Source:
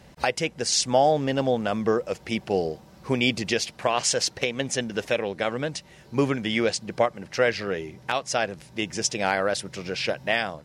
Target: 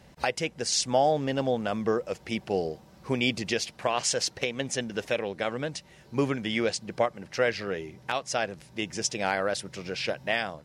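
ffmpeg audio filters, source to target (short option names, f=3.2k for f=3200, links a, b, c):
-af "volume=-3.5dB" -ar 44100 -c:a aac -b:a 192k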